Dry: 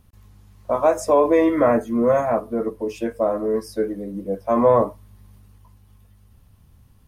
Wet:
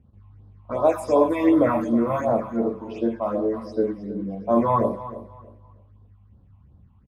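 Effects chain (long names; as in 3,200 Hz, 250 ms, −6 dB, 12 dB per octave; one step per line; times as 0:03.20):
low-pass that shuts in the quiet parts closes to 1,300 Hz, open at −14 dBFS
on a send at −4.5 dB: convolution reverb RT60 0.35 s, pre-delay 31 ms
on the sum: all-pass phaser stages 6, 2.7 Hz, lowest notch 410–2,300 Hz
high-pass filter 58 Hz
repeating echo 316 ms, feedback 24%, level −14.5 dB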